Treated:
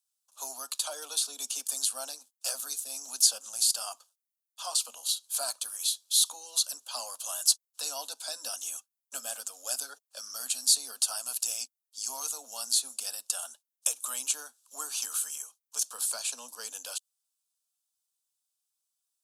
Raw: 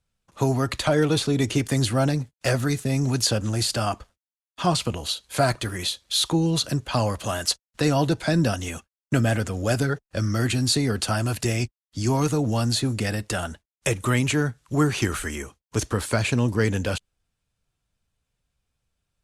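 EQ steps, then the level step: steep high-pass 240 Hz 72 dB/oct; differentiator; fixed phaser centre 830 Hz, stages 4; +4.0 dB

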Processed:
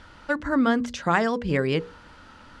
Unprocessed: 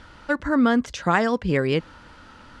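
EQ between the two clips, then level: notches 60/120/180/240/300/360/420/480 Hz; -1.5 dB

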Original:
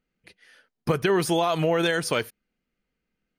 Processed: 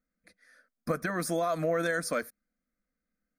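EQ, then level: fixed phaser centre 590 Hz, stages 8; -3.0 dB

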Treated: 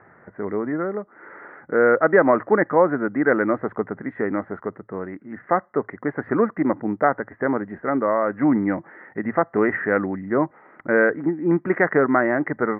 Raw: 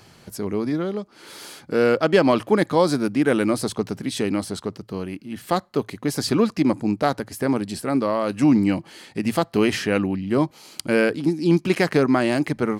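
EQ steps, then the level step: rippled Chebyshev low-pass 2000 Hz, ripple 3 dB; tilt +3 dB/oct; +5.0 dB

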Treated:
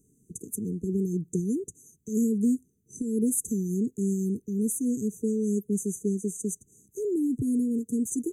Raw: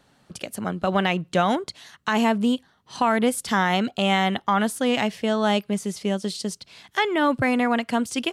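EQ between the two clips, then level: brick-wall FIR band-stop 470–6000 Hz; high shelf 5600 Hz +6.5 dB; -2.0 dB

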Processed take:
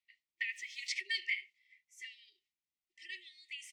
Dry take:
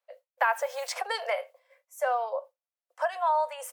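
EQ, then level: brick-wall FIR band-stop 380–1800 Hz; air absorption 130 m; +3.0 dB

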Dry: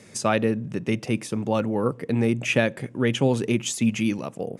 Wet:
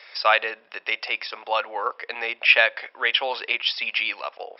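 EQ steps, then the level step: HPF 670 Hz 24 dB/oct; brick-wall FIR low-pass 5500 Hz; bell 2800 Hz +7 dB 3 oct; +3.0 dB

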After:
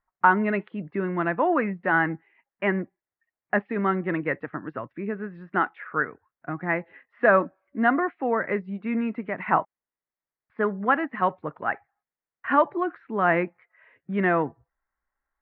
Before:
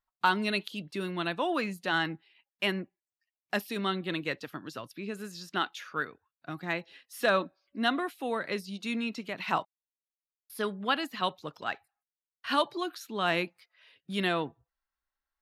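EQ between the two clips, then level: elliptic low-pass 2000 Hz, stop band 80 dB; +8.0 dB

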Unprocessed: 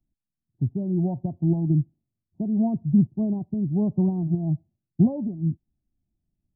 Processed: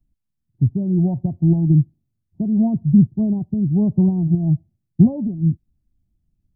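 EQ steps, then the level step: low shelf 200 Hz +12 dB; 0.0 dB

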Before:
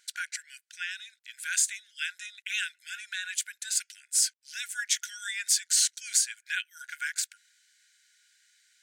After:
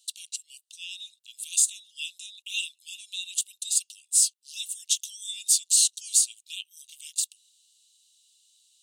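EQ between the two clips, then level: rippled Chebyshev high-pass 2700 Hz, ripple 6 dB; +6.0 dB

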